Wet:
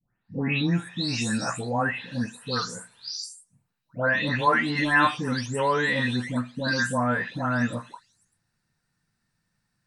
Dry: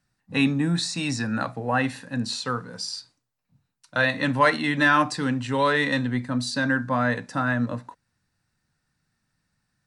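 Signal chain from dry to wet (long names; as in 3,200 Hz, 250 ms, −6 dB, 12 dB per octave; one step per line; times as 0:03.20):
every frequency bin delayed by itself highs late, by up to 437 ms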